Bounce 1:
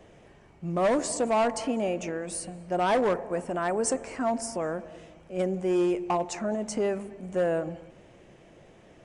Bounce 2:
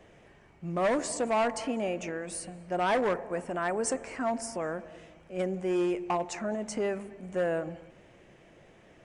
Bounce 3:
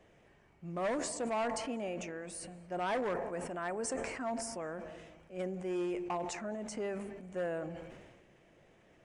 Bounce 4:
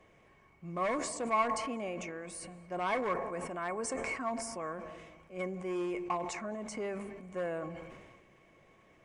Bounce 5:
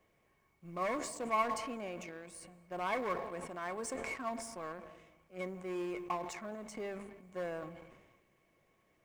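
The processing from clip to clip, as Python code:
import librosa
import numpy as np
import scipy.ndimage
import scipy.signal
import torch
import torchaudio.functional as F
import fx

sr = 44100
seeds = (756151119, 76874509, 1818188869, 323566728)

y1 = fx.peak_eq(x, sr, hz=1900.0, db=4.5, octaves=1.3)
y1 = F.gain(torch.from_numpy(y1), -3.5).numpy()
y2 = fx.sustainer(y1, sr, db_per_s=39.0)
y2 = F.gain(torch.from_numpy(y2), -7.5).numpy()
y3 = fx.small_body(y2, sr, hz=(1100.0, 2200.0), ring_ms=85, db=17)
y4 = fx.law_mismatch(y3, sr, coded='A')
y4 = F.gain(torch.from_numpy(y4), -1.5).numpy()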